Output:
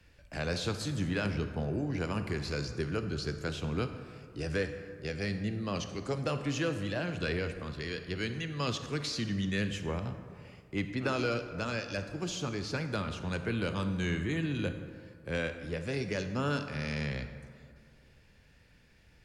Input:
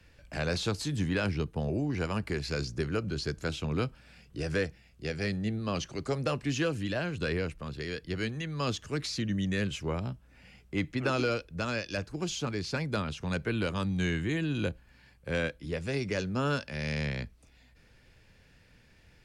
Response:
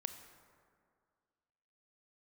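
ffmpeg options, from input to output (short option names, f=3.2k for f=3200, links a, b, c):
-filter_complex "[0:a]asettb=1/sr,asplit=3[a][b][c];[a]atrim=end=7.074[d];[b]atrim=start=7.07:end=9.65,asetpts=PTS-STARTPTS,afade=t=in:d=0.004:c=qsin,afade=t=out:st=2.576:d=0.004:c=qsin,equalizer=f=3.2k:t=o:w=1.8:g=3[e];[c]atrim=start=9.646[f];[d][e]acrossfade=d=0.004:c1=hsin:c2=qsin[g];[g][f]acrossfade=d=0.004:c1=qsin:c2=hsin[h];[1:a]atrim=start_sample=2205[i];[h][i]afir=irnorm=-1:irlink=0"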